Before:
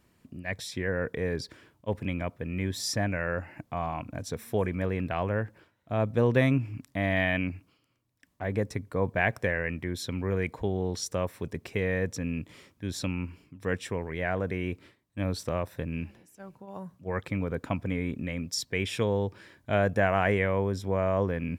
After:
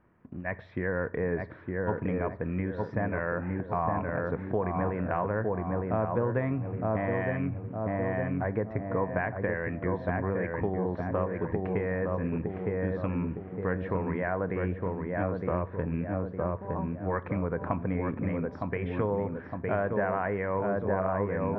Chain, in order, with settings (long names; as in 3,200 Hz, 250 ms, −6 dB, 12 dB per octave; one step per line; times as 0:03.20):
low-shelf EQ 430 Hz −4.5 dB
feedback echo with a low-pass in the loop 911 ms, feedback 49%, low-pass 1,300 Hz, level −3 dB
in parallel at −12 dB: bit reduction 8 bits
on the sum: downward compressor 6 to 1, threshold −29 dBFS, peak gain reduction 11 dB
low-pass filter 1,700 Hz 24 dB per octave
on a send at −14 dB: convolution reverb RT60 0.50 s, pre-delay 6 ms
on the sum: dynamic equaliser 1,000 Hz, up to +5 dB, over −55 dBFS, Q 6.8
level +4 dB